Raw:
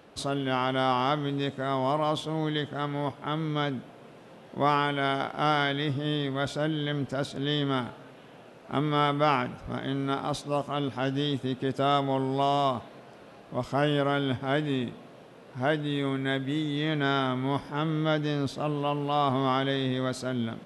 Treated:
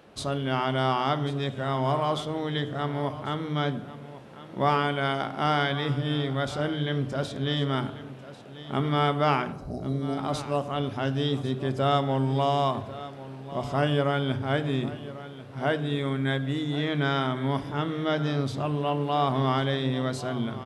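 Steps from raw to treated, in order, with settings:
0:09.52–0:10.18: linear-phase brick-wall band-stop 790–3,800 Hz
single-tap delay 1,094 ms −15.5 dB
on a send at −13 dB: convolution reverb RT60 0.90 s, pre-delay 3 ms

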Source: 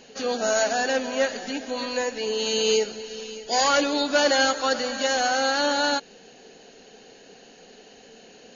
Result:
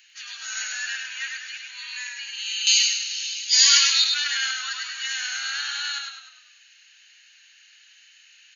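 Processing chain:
inverse Chebyshev high-pass filter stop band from 580 Hz, stop band 60 dB
parametric band 5,200 Hz −10.5 dB 1.7 octaves, from 0:02.67 +5 dB, from 0:04.04 −10 dB
echo with shifted repeats 101 ms, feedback 45%, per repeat −39 Hz, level −3.5 dB
level +5.5 dB

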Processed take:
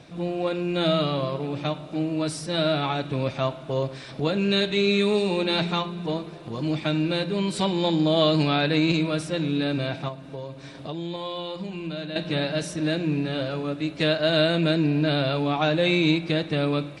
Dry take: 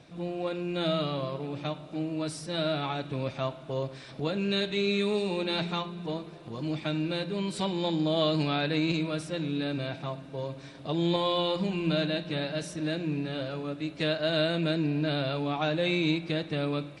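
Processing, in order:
0:10.08–0:12.16: downward compressor 2.5 to 1, threshold −41 dBFS, peak gain reduction 12 dB
level +6 dB

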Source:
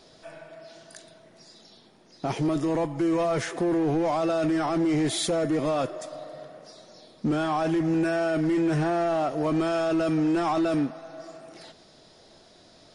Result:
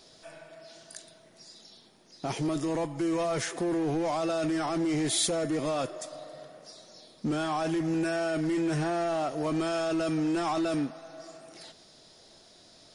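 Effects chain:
high-shelf EQ 3,800 Hz +9.5 dB
level −4.5 dB

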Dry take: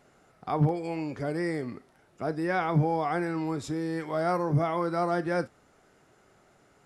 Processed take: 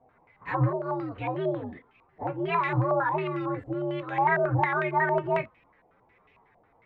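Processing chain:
partials spread apart or drawn together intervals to 127%
low-pass on a step sequencer 11 Hz 710–2,500 Hz

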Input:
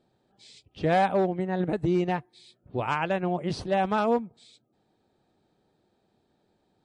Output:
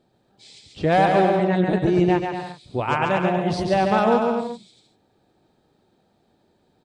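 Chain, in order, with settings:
0:01.10–0:01.61: parametric band 2,800 Hz +7 dB 1.5 octaves
bouncing-ball delay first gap 140 ms, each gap 0.7×, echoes 5
level +4.5 dB

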